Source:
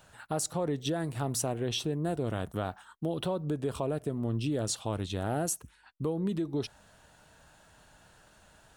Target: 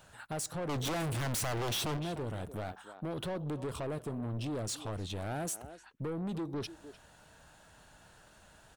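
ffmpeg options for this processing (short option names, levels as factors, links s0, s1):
-filter_complex "[0:a]asettb=1/sr,asplit=3[s0][s1][s2];[s0]atrim=end=0.694[s3];[s1]atrim=start=0.69:end=1.97,asetpts=PTS-STARTPTS,afade=t=in:d=0.004:c=qsin,afade=t=out:st=1.276:d=0.004:c=qsin,aeval=exprs='0.126*sin(PI/2*3.98*val(0)/0.126)':c=same[s4];[s2]atrim=start=1.966[s5];[s3][s4]acrossfade=d=0.004:c1=hsin:c2=qsin[s6];[s6][s5]acrossfade=d=0.004:c1=qsin:c2=hsin,asplit=2[s7][s8];[s8]adelay=300,highpass=300,lowpass=3400,asoftclip=type=hard:threshold=0.0596,volume=0.158[s9];[s7][s9]amix=inputs=2:normalize=0,asoftclip=type=tanh:threshold=0.0224"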